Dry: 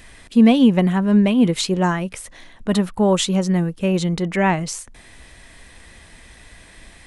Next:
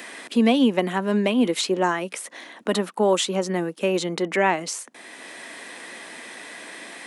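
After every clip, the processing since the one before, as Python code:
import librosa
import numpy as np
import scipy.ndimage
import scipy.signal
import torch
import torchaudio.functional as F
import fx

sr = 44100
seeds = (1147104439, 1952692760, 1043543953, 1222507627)

y = scipy.signal.sosfilt(scipy.signal.butter(4, 260.0, 'highpass', fs=sr, output='sos'), x)
y = fx.band_squash(y, sr, depth_pct=40)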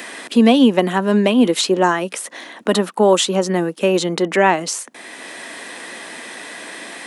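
y = fx.dynamic_eq(x, sr, hz=2200.0, q=5.3, threshold_db=-46.0, ratio=4.0, max_db=-5)
y = y * 10.0 ** (6.5 / 20.0)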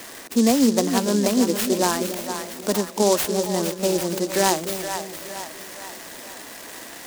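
y = fx.echo_split(x, sr, split_hz=560.0, low_ms=295, high_ms=460, feedback_pct=52, wet_db=-8)
y = fx.noise_mod_delay(y, sr, seeds[0], noise_hz=5700.0, depth_ms=0.092)
y = y * 10.0 ** (-6.0 / 20.0)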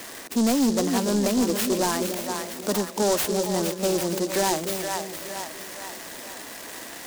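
y = 10.0 ** (-16.5 / 20.0) * np.tanh(x / 10.0 ** (-16.5 / 20.0))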